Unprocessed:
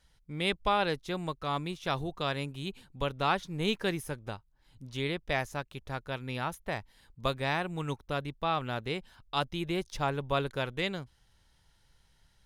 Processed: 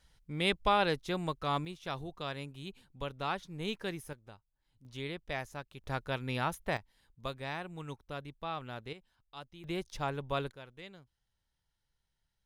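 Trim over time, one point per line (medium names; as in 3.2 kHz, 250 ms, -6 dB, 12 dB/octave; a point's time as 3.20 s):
0 dB
from 1.65 s -7 dB
from 4.13 s -14 dB
from 4.85 s -7 dB
from 5.84 s +1 dB
from 6.77 s -8.5 dB
from 8.93 s -17 dB
from 9.64 s -4.5 dB
from 10.52 s -17 dB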